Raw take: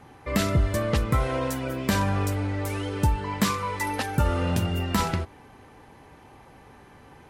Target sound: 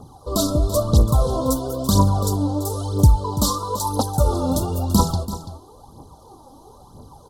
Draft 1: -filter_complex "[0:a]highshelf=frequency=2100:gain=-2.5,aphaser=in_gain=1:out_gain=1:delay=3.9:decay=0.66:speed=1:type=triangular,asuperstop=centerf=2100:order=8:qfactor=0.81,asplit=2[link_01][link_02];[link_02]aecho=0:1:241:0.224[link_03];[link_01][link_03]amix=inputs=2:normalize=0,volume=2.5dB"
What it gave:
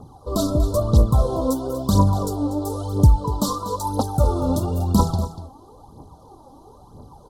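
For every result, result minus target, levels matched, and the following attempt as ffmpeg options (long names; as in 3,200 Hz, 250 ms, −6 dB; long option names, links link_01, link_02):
echo 95 ms early; 4,000 Hz band −5.0 dB
-filter_complex "[0:a]highshelf=frequency=2100:gain=-2.5,aphaser=in_gain=1:out_gain=1:delay=3.9:decay=0.66:speed=1:type=triangular,asuperstop=centerf=2100:order=8:qfactor=0.81,asplit=2[link_01][link_02];[link_02]aecho=0:1:336:0.224[link_03];[link_01][link_03]amix=inputs=2:normalize=0,volume=2.5dB"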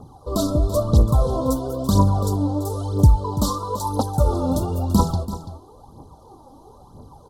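4,000 Hz band −5.0 dB
-filter_complex "[0:a]highshelf=frequency=2100:gain=4.5,aphaser=in_gain=1:out_gain=1:delay=3.9:decay=0.66:speed=1:type=triangular,asuperstop=centerf=2100:order=8:qfactor=0.81,asplit=2[link_01][link_02];[link_02]aecho=0:1:336:0.224[link_03];[link_01][link_03]amix=inputs=2:normalize=0,volume=2.5dB"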